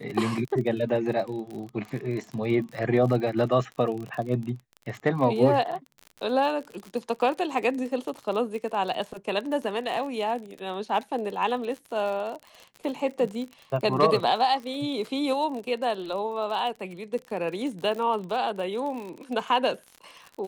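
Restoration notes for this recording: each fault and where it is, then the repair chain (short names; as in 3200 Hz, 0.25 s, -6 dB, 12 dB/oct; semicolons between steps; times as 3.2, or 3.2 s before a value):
crackle 42/s -33 dBFS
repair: de-click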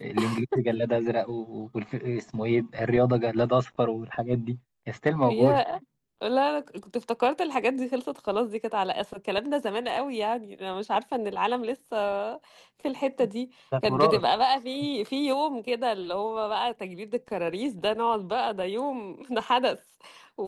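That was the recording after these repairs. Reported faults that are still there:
none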